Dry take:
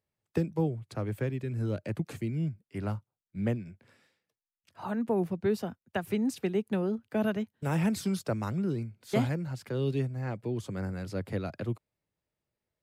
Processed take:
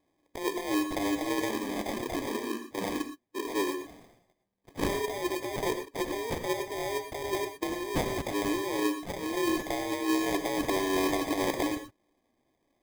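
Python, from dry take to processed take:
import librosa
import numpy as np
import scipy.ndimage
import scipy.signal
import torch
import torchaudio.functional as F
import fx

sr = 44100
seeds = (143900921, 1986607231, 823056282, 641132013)

y = fx.band_shuffle(x, sr, order='2341')
y = scipy.signal.sosfilt(scipy.signal.butter(2, 9000.0, 'lowpass', fs=sr, output='sos'), y)
y = fx.high_shelf(y, sr, hz=2100.0, db=8.5)
y = fx.over_compress(y, sr, threshold_db=-31.0, ratio=-1.0)
y = fx.chorus_voices(y, sr, voices=4, hz=1.2, base_ms=29, depth_ms=3.0, mix_pct=60, at=(1.48, 3.54), fade=0.02)
y = fx.sample_hold(y, sr, seeds[0], rate_hz=1400.0, jitter_pct=0)
y = fx.rev_gated(y, sr, seeds[1], gate_ms=140, shape='rising', drr_db=7.0)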